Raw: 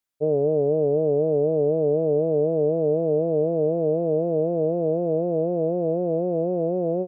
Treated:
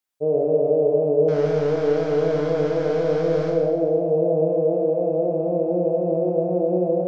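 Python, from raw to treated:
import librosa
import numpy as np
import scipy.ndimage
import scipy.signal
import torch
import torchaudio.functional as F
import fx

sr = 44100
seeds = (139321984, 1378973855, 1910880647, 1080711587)

y = fx.delta_mod(x, sr, bps=32000, step_db=-40.5, at=(1.28, 3.5))
y = fx.low_shelf(y, sr, hz=180.0, db=-5.5)
y = fx.rev_schroeder(y, sr, rt60_s=1.3, comb_ms=30, drr_db=-0.5)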